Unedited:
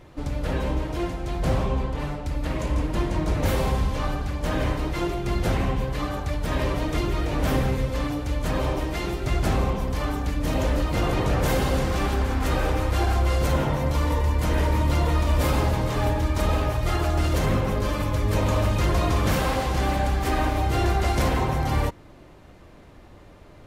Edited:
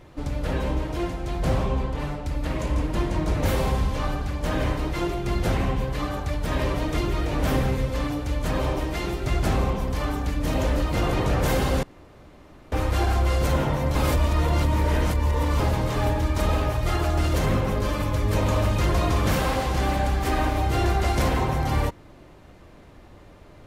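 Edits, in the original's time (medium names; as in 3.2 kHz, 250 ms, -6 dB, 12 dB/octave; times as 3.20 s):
11.83–12.72 s: room tone
13.95–15.60 s: reverse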